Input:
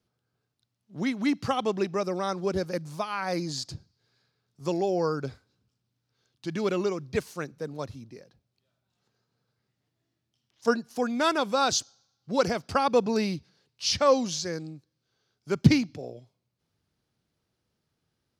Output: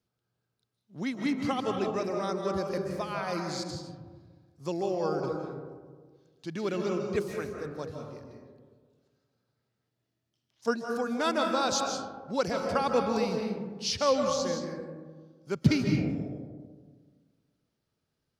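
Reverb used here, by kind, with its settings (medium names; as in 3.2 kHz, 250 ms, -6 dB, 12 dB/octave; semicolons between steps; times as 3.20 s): algorithmic reverb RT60 1.6 s, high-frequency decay 0.3×, pre-delay 115 ms, DRR 2.5 dB; trim -4.5 dB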